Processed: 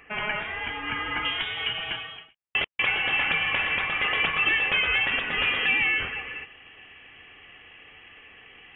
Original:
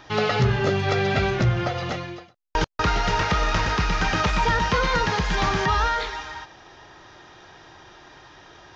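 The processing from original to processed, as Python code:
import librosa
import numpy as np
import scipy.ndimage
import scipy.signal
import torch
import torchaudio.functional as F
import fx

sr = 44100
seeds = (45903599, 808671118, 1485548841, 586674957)

y = fx.highpass(x, sr, hz=fx.steps((0.0, 1300.0), (1.25, 530.0)), slope=12)
y = fx.freq_invert(y, sr, carrier_hz=3600)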